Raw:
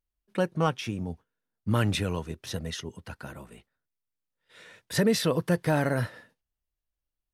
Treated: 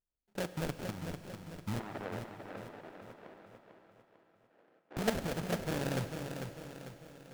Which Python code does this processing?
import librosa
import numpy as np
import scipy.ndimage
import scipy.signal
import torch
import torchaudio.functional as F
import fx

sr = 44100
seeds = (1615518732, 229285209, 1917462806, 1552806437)

y = fx.level_steps(x, sr, step_db=10)
y = fx.sample_hold(y, sr, seeds[0], rate_hz=1100.0, jitter_pct=20)
y = fx.bandpass_edges(y, sr, low_hz=400.0, high_hz=2000.0, at=(1.79, 4.97))
y = fx.echo_feedback(y, sr, ms=447, feedback_pct=47, wet_db=-7.0)
y = fx.rev_schroeder(y, sr, rt60_s=3.8, comb_ms=30, drr_db=10.5)
y = y * librosa.db_to_amplitude(-5.0)